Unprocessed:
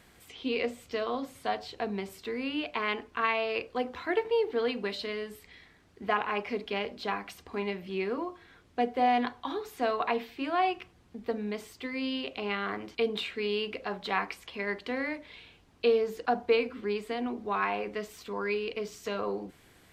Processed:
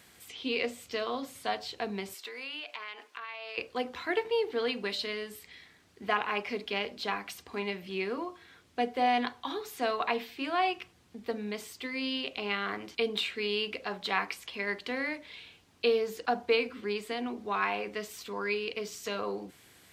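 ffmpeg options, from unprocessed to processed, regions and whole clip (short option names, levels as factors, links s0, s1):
-filter_complex "[0:a]asettb=1/sr,asplit=3[s0][s1][s2];[s0]atrim=end=2.144[s3];[s1]atrim=start=2.14:end=3.58,asetpts=PTS-STARTPTS,afade=t=in:d=0.004:c=qsin,afade=t=out:st=1.436:d=0.004:c=qsin,highpass=610,acompressor=threshold=0.0126:ratio=6:attack=3.2:release=140:knee=1:detection=peak[s4];[s2]atrim=start=3.576[s5];[s3][s4]acrossfade=d=0.004:c1=hsin:c2=qsin[s6];[s6][s5]acrossfade=d=0.004:c1=qsin:c2=hsin,highpass=70,highshelf=f=2200:g=8.5,volume=0.75"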